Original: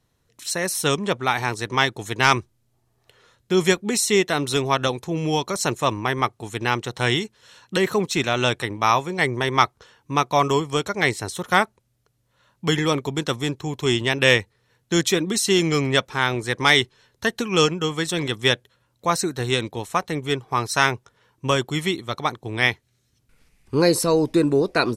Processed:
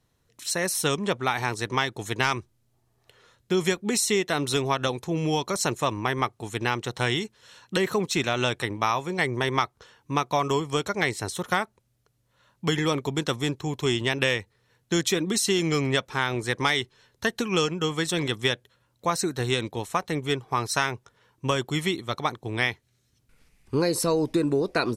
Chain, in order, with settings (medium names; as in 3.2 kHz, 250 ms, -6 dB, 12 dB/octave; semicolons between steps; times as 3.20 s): compression, threshold -18 dBFS, peak gain reduction 8 dB; trim -1.5 dB